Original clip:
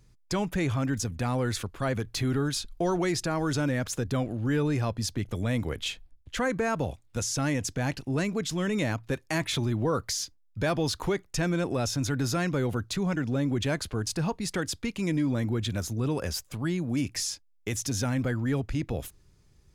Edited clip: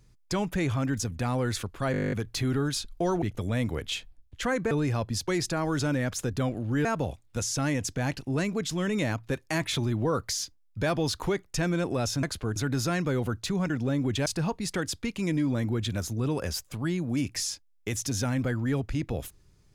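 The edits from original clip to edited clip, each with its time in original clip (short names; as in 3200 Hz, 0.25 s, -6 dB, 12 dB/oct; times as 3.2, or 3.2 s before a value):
1.92 stutter 0.02 s, 11 plays
3.02–4.59 swap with 5.16–6.65
13.73–14.06 move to 12.03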